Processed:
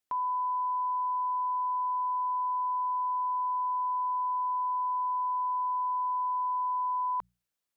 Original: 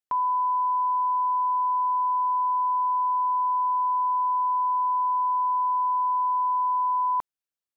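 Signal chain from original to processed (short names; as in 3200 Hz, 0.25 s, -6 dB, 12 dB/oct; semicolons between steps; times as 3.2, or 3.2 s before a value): notches 60/120/180 Hz; limiter -32 dBFS, peak gain reduction 11 dB; gain +5 dB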